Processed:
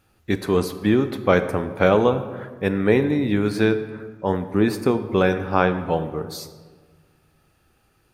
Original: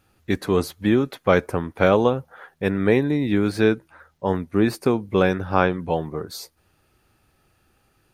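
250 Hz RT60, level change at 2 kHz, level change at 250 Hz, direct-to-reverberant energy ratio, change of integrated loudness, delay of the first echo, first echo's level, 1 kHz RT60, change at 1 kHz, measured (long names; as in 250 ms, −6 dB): 1.8 s, +0.5 dB, +0.5 dB, 10.0 dB, +0.5 dB, no echo audible, no echo audible, 1.4 s, +0.5 dB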